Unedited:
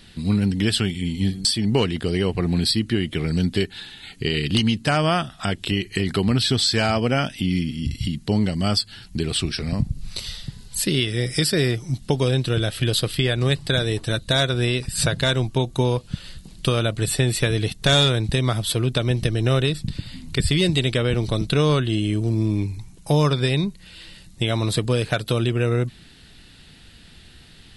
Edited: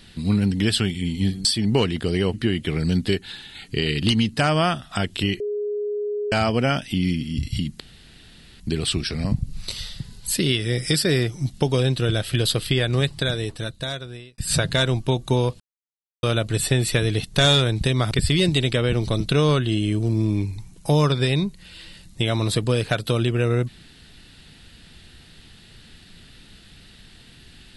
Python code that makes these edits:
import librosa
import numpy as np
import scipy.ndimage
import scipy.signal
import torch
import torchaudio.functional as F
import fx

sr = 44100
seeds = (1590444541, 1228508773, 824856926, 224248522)

y = fx.edit(x, sr, fx.cut(start_s=2.34, length_s=0.48),
    fx.bleep(start_s=5.88, length_s=0.92, hz=415.0, db=-23.0),
    fx.room_tone_fill(start_s=8.28, length_s=0.8),
    fx.fade_out_span(start_s=13.38, length_s=1.48),
    fx.silence(start_s=16.08, length_s=0.63),
    fx.cut(start_s=18.59, length_s=1.73), tone=tone)